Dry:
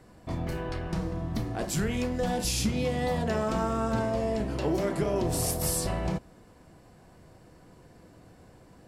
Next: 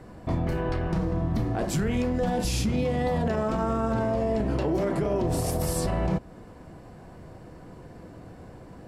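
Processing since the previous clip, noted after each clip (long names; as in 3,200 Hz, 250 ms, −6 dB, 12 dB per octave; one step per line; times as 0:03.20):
high-shelf EQ 2,600 Hz −9.5 dB
in parallel at −2 dB: downward compressor, threshold −38 dBFS, peak gain reduction 14 dB
on the sum: brickwall limiter −21.5 dBFS, peak gain reduction 6.5 dB
level +4 dB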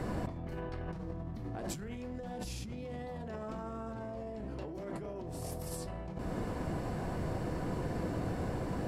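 compressor whose output falls as the input rises −38 dBFS, ratio −1
level −1 dB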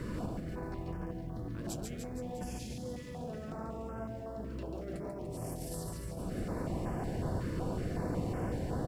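bit-depth reduction 12 bits, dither none
reverse bouncing-ball delay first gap 140 ms, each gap 1.1×, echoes 5
notch on a step sequencer 5.4 Hz 750–3,900 Hz
level −1 dB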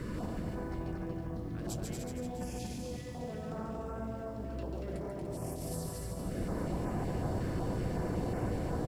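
single-tap delay 233 ms −4.5 dB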